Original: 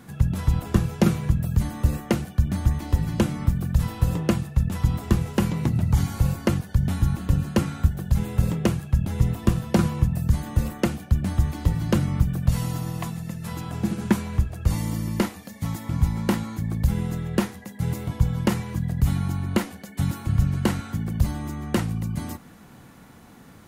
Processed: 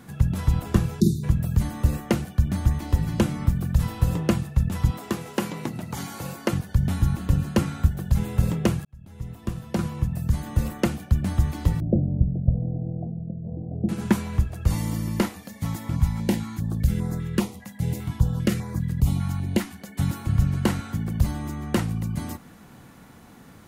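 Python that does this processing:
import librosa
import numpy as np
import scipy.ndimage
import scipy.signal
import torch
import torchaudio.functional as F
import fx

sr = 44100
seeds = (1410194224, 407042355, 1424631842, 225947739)

y = fx.spec_erase(x, sr, start_s=1.0, length_s=0.24, low_hz=420.0, high_hz=3500.0)
y = fx.highpass(y, sr, hz=270.0, slope=12, at=(4.91, 6.53))
y = fx.steep_lowpass(y, sr, hz=700.0, slope=72, at=(11.8, 13.89))
y = fx.filter_held_notch(y, sr, hz=5.0, low_hz=390.0, high_hz=2900.0, at=(15.95, 19.8), fade=0.02)
y = fx.edit(y, sr, fx.fade_in_span(start_s=8.85, length_s=1.86), tone=tone)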